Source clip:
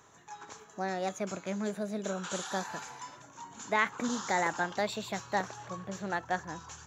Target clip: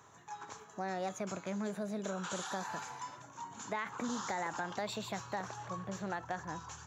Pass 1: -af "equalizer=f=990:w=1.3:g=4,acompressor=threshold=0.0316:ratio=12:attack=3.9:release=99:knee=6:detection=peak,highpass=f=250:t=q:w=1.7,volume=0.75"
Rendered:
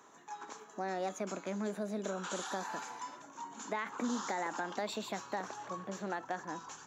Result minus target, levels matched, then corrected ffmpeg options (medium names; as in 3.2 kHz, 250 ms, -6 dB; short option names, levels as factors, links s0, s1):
125 Hz band -4.0 dB
-af "equalizer=f=990:w=1.3:g=4,acompressor=threshold=0.0316:ratio=12:attack=3.9:release=99:knee=6:detection=peak,highpass=f=93:t=q:w=1.7,volume=0.75"